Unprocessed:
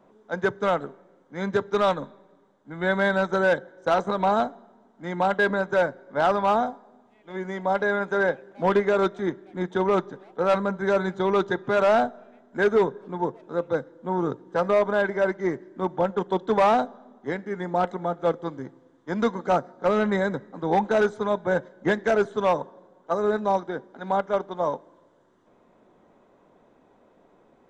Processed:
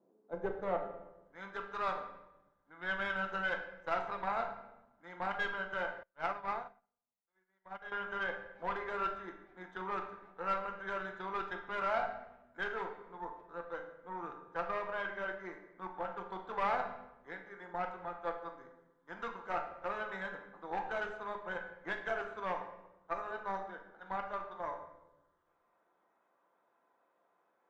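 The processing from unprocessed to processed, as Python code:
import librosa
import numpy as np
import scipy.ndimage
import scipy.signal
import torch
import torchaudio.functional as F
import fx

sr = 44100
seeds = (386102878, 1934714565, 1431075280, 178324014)

y = fx.high_shelf(x, sr, hz=5100.0, db=11.0)
y = fx.comb_fb(y, sr, f0_hz=170.0, decay_s=0.86, harmonics='all', damping=0.0, mix_pct=60)
y = fx.filter_sweep_bandpass(y, sr, from_hz=360.0, to_hz=1300.0, start_s=0.19, end_s=1.36, q=1.4)
y = fx.tube_stage(y, sr, drive_db=25.0, bias=0.7)
y = fx.room_shoebox(y, sr, seeds[0], volume_m3=340.0, walls='mixed', distance_m=0.75)
y = fx.upward_expand(y, sr, threshold_db=-53.0, expansion=2.5, at=(6.03, 7.92))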